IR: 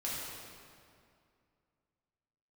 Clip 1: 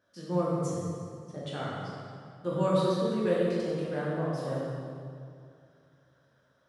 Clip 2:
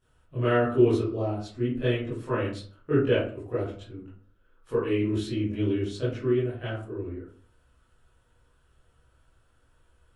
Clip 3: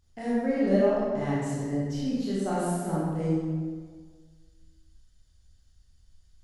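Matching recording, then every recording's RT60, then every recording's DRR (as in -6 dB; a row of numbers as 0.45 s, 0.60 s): 1; 2.3 s, 0.45 s, 1.6 s; -7.0 dB, -12.0 dB, -8.0 dB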